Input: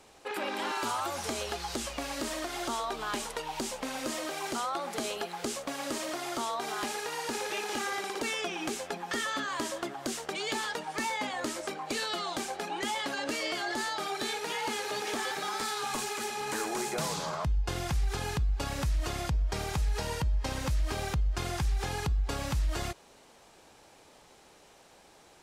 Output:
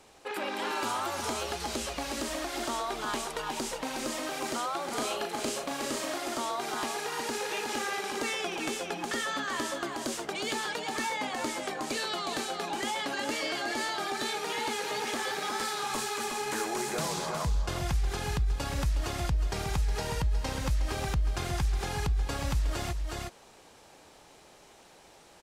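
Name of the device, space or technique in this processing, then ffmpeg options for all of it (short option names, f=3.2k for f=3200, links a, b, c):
ducked delay: -filter_complex "[0:a]asplit=3[a][b][c];[b]adelay=364,volume=-2.5dB[d];[c]apad=whole_len=1137211[e];[d][e]sidechaincompress=threshold=-35dB:ratio=4:attack=47:release=514[f];[a][f]amix=inputs=2:normalize=0,asettb=1/sr,asplit=3[g][h][i];[g]atrim=end=4.854[j];[h]atrim=start=4.85:end=6.18,asetpts=PTS-STARTPTS,afade=t=in:d=0.004:c=qsin,afade=t=out:st=1.326:d=0.004:c=qsin,asplit=2[k][l];[l]adelay=37,volume=-5dB[m];[k][m]amix=inputs=2:normalize=0,atrim=end_sample=58653[n];[i]atrim=start=6.176[o];[j][n]acrossfade=d=0.004:c1=hsin:c2=qsin[p];[p][o]acrossfade=d=0.004:c1=qsin:c2=hsin"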